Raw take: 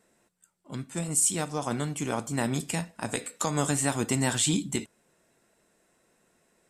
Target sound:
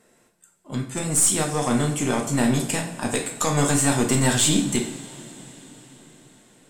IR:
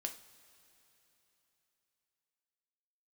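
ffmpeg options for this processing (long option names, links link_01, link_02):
-filter_complex "[0:a]acontrast=40,aeval=exprs='(tanh(5.01*val(0)+0.25)-tanh(0.25))/5.01':channel_layout=same[link_01];[1:a]atrim=start_sample=2205,asetrate=31311,aresample=44100[link_02];[link_01][link_02]afir=irnorm=-1:irlink=0,volume=2.5dB"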